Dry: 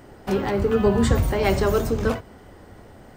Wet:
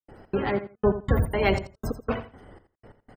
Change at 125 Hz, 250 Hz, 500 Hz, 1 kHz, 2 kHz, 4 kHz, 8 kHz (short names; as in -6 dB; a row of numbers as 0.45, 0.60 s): -4.5, -6.5, -5.0, -3.5, -2.0, -5.0, -13.5 dB